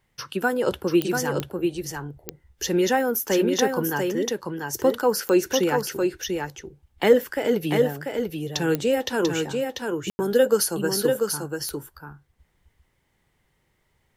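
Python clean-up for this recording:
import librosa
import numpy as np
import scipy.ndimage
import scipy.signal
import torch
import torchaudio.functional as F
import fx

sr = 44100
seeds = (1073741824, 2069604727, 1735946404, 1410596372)

y = fx.fix_declick_ar(x, sr, threshold=10.0)
y = fx.fix_ambience(y, sr, seeds[0], print_start_s=12.89, print_end_s=13.39, start_s=10.1, end_s=10.19)
y = fx.fix_echo_inverse(y, sr, delay_ms=691, level_db=-4.5)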